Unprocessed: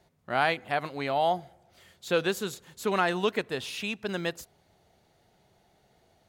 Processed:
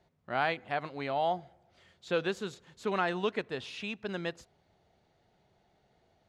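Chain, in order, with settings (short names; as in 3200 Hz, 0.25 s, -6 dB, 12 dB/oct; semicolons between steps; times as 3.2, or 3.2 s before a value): air absorption 91 m; gain -4 dB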